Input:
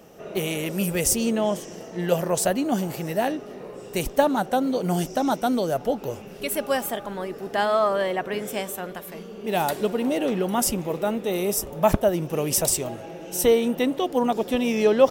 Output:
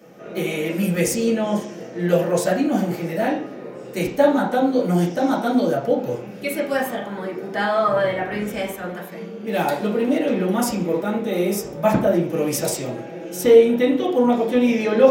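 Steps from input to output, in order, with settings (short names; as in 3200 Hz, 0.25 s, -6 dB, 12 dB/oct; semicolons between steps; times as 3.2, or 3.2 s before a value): 7.86–8.83 octaver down 2 oct, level -5 dB; reverb RT60 0.50 s, pre-delay 3 ms, DRR -7 dB; gain -5 dB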